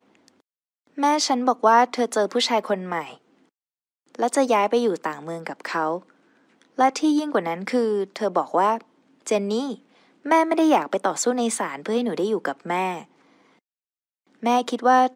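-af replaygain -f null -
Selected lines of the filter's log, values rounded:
track_gain = +2.1 dB
track_peak = 0.354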